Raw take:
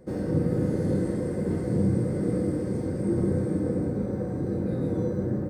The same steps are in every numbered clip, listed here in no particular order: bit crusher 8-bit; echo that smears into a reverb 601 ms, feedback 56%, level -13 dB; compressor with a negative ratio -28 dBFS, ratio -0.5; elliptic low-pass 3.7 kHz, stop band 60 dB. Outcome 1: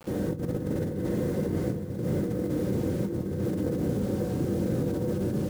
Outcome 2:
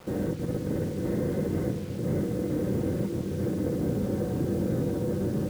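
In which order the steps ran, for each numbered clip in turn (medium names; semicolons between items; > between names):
elliptic low-pass > bit crusher > compressor with a negative ratio > echo that smears into a reverb; elliptic low-pass > compressor with a negative ratio > bit crusher > echo that smears into a reverb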